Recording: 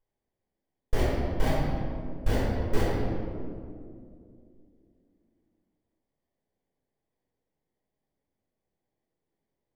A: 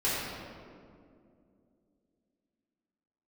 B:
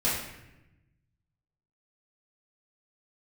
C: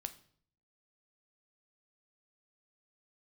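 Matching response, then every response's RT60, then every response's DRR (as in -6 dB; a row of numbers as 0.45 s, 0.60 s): A; 2.4 s, 0.95 s, 0.55 s; -11.0 dB, -11.5 dB, 9.0 dB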